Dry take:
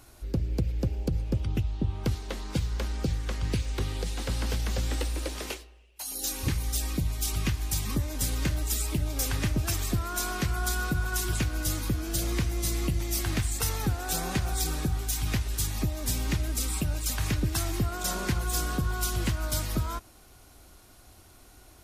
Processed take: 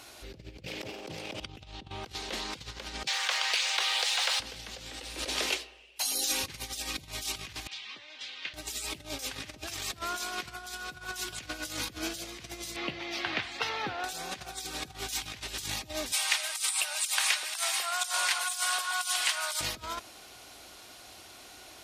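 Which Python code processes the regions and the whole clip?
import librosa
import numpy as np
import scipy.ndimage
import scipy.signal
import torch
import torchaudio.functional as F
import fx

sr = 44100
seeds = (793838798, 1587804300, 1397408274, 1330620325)

y = fx.chain(x, sr, fx.lower_of_two(delay_ms=0.37),
    fx.highpass(hz=240.0, slope=12),
    fx.env_flatten(amount_pct=100), at=(0.66, 1.4))
y = fx.chain(y, sr, fx.median_filter(points=3),
    fx.highpass(hz=710.0, slope=24),
    fx.env_flatten(amount_pct=70), at=(3.07, 4.4))
y = fx.chain(y, sr, fx.lowpass(hz=3300.0, slope=24),
    fx.differentiator(), at=(7.67, 8.54))
y = fx.chain(y, sr, fx.highpass(hz=530.0, slope=6),
    fx.air_absorb(metres=300.0), at=(12.76, 14.04))
y = fx.chain(y, sr, fx.highpass(hz=780.0, slope=24),
    fx.peak_eq(hz=9000.0, db=10.5, octaves=0.29), at=(16.12, 19.61))
y = fx.peak_eq(y, sr, hz=730.0, db=7.5, octaves=1.6)
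y = fx.over_compress(y, sr, threshold_db=-32.0, ratio=-0.5)
y = fx.weighting(y, sr, curve='D')
y = y * librosa.db_to_amplitude(-4.0)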